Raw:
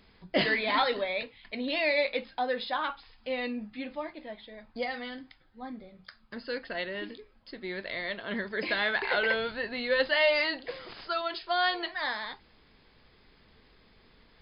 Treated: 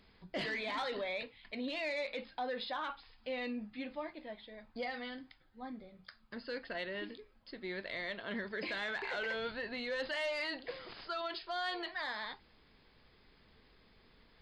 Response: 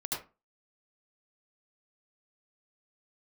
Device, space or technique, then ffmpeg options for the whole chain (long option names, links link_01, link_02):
soft clipper into limiter: -af "asoftclip=type=tanh:threshold=-19dB,alimiter=level_in=2.5dB:limit=-24dB:level=0:latency=1:release=36,volume=-2.5dB,volume=-4.5dB"